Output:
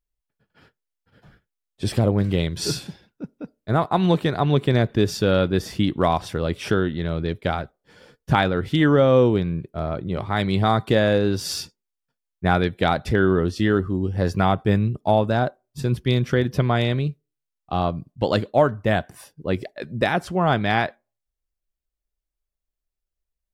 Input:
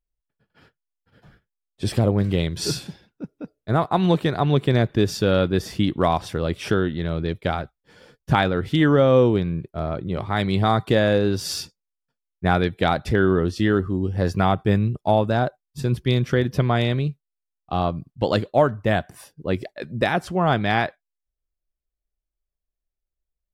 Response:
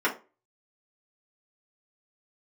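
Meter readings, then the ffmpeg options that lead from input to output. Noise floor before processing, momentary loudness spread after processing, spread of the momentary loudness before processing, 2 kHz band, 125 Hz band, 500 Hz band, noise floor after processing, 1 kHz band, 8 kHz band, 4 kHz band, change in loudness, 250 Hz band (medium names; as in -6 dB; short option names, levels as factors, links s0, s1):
-84 dBFS, 10 LU, 10 LU, +0.5 dB, 0.0 dB, 0.0 dB, -83 dBFS, 0.0 dB, 0.0 dB, 0.0 dB, 0.0 dB, 0.0 dB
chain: -filter_complex "[0:a]asplit=2[s0][s1];[1:a]atrim=start_sample=2205[s2];[s1][s2]afir=irnorm=-1:irlink=0,volume=0.0168[s3];[s0][s3]amix=inputs=2:normalize=0"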